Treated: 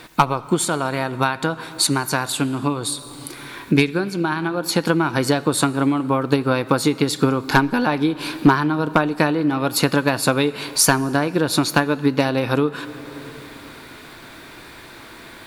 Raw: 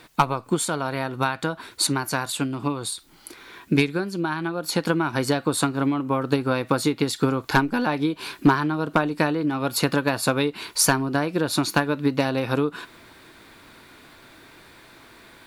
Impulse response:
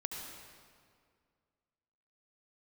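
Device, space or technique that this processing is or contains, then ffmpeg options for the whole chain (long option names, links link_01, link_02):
ducked reverb: -filter_complex "[0:a]asplit=3[link_01][link_02][link_03];[1:a]atrim=start_sample=2205[link_04];[link_02][link_04]afir=irnorm=-1:irlink=0[link_05];[link_03]apad=whole_len=681891[link_06];[link_05][link_06]sidechaincompress=threshold=-34dB:ratio=6:attack=11:release=521,volume=-0.5dB[link_07];[link_01][link_07]amix=inputs=2:normalize=0,volume=3dB"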